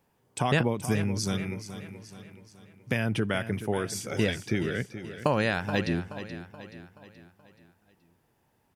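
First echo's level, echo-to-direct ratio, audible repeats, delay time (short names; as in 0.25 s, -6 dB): -12.0 dB, -11.0 dB, 4, 0.427 s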